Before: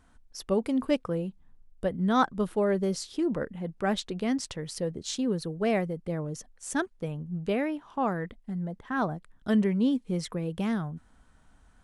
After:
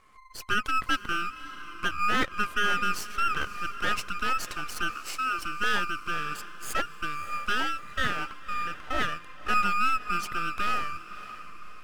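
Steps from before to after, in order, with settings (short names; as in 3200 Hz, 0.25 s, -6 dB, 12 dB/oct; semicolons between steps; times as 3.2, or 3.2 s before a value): band-swap scrambler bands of 1000 Hz; half-wave rectifier; in parallel at -3 dB: limiter -21 dBFS, peak gain reduction 7.5 dB; 4.9–5.39 on the sum: rippled Chebyshev high-pass 260 Hz, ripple 3 dB; diffused feedback echo 0.576 s, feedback 47%, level -14 dB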